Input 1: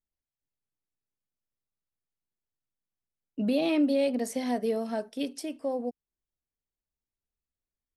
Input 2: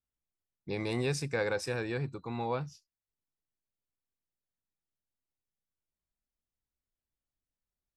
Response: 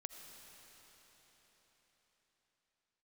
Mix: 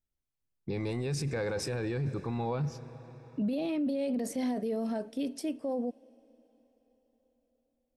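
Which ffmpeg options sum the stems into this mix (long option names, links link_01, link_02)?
-filter_complex "[0:a]volume=-3.5dB,asplit=2[link_01][link_02];[link_02]volume=-18.5dB[link_03];[1:a]agate=range=-14dB:threshold=-50dB:ratio=16:detection=peak,volume=2dB,asplit=2[link_04][link_05];[link_05]volume=-8.5dB[link_06];[2:a]atrim=start_sample=2205[link_07];[link_03][link_06]amix=inputs=2:normalize=0[link_08];[link_08][link_07]afir=irnorm=-1:irlink=0[link_09];[link_01][link_04][link_09]amix=inputs=3:normalize=0,lowshelf=frequency=470:gain=8.5,alimiter=level_in=1.5dB:limit=-24dB:level=0:latency=1:release=15,volume=-1.5dB"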